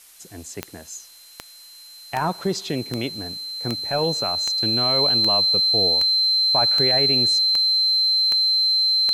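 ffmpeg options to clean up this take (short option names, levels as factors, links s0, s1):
-af "adeclick=t=4,bandreject=f=4100:w=30,afftdn=nr=23:nf=-45"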